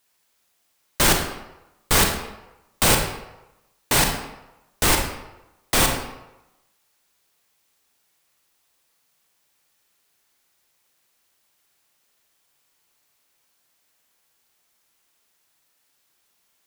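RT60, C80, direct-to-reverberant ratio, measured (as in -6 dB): 0.95 s, 7.5 dB, 2.5 dB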